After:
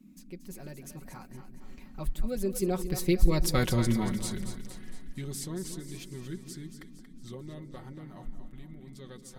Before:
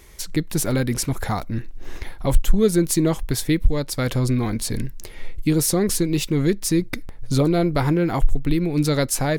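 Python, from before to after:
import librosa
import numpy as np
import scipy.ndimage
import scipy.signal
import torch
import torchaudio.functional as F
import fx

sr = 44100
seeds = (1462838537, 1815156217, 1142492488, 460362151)

y = fx.doppler_pass(x, sr, speed_mps=41, closest_m=12.0, pass_at_s=3.53)
y = y + 0.61 * np.pad(y, (int(5.4 * sr / 1000.0), 0))[:len(y)]
y = fx.dmg_noise_band(y, sr, seeds[0], low_hz=170.0, high_hz=280.0, level_db=-51.0)
y = fx.echo_split(y, sr, split_hz=420.0, low_ms=170, high_ms=231, feedback_pct=52, wet_db=-9.5)
y = F.gain(torch.from_numpy(y), -3.5).numpy()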